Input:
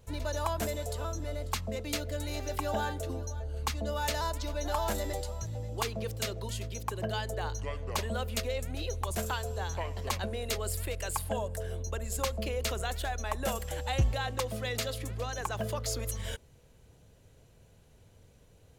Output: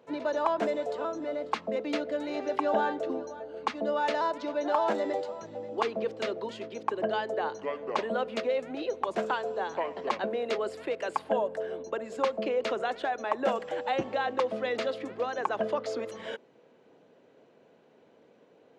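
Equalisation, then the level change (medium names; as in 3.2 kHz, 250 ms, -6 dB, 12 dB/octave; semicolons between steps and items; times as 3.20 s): high-pass 250 Hz 24 dB/octave; tape spacing loss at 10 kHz 35 dB; +9.0 dB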